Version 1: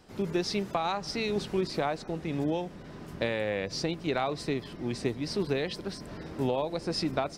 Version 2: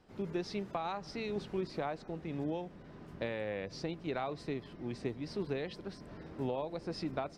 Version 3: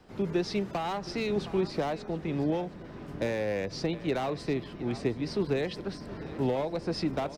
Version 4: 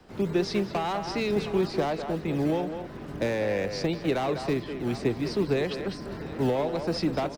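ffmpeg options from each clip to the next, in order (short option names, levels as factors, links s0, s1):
-af "highshelf=f=4900:g=-12,volume=0.447"
-filter_complex "[0:a]aecho=1:1:715:0.133,acrossover=split=270|480|4400[s0][s1][s2][s3];[s2]asoftclip=type=hard:threshold=0.0112[s4];[s0][s1][s4][s3]amix=inputs=4:normalize=0,volume=2.51"
-filter_complex "[0:a]acrossover=split=170[s0][s1];[s0]acrusher=samples=21:mix=1:aa=0.000001:lfo=1:lforange=21:lforate=2.5[s2];[s2][s1]amix=inputs=2:normalize=0,asplit=2[s3][s4];[s4]adelay=200,highpass=300,lowpass=3400,asoftclip=type=hard:threshold=0.0473,volume=0.447[s5];[s3][s5]amix=inputs=2:normalize=0,volume=1.41"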